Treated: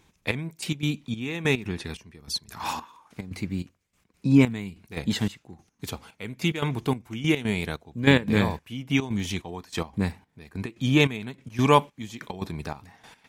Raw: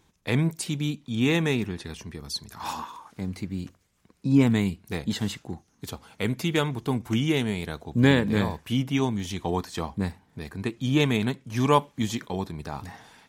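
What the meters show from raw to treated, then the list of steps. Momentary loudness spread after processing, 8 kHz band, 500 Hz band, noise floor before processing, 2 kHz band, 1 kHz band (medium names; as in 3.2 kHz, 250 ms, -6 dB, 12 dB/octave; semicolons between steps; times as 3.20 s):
18 LU, -1.0 dB, 0.0 dB, -66 dBFS, +2.5 dB, +1.0 dB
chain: peaking EQ 2.4 kHz +5 dB 0.5 oct; trance gate "xxx...x." 145 bpm -12 dB; trim +2 dB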